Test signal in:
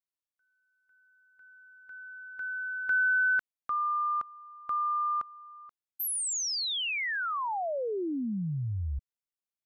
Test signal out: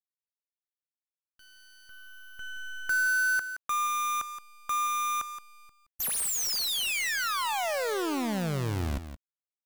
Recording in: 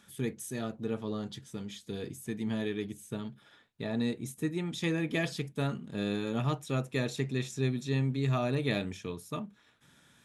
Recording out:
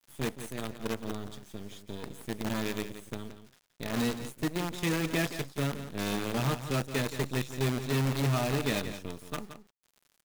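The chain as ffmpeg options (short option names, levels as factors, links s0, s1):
-af "acrusher=bits=6:dc=4:mix=0:aa=0.000001,aecho=1:1:172:0.282"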